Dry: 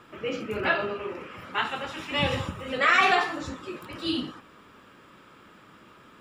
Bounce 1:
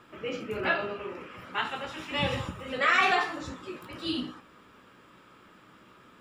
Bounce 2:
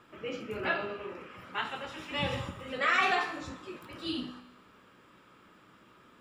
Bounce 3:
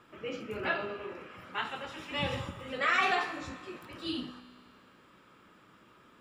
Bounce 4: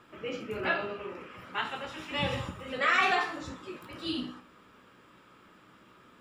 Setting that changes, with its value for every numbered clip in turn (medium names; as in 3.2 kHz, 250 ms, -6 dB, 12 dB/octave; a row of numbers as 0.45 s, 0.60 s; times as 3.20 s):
feedback comb, decay: 0.17 s, 1 s, 2.1 s, 0.45 s